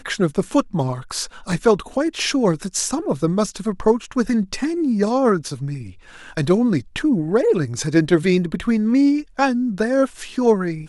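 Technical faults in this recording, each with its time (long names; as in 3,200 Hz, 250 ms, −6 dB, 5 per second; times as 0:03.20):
0:01.52: drop-out 2.3 ms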